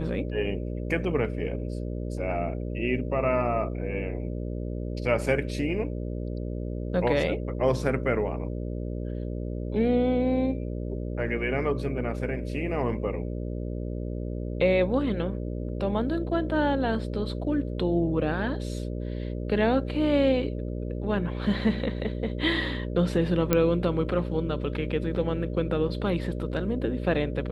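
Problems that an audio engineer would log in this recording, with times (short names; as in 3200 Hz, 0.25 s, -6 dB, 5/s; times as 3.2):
buzz 60 Hz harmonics 10 -32 dBFS
23.53 pop -7 dBFS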